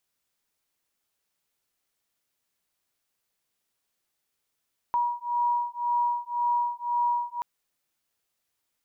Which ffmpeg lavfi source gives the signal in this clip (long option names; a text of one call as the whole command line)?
ffmpeg -f lavfi -i "aevalsrc='0.0447*(sin(2*PI*959*t)+sin(2*PI*960.9*t))':duration=2.48:sample_rate=44100" out.wav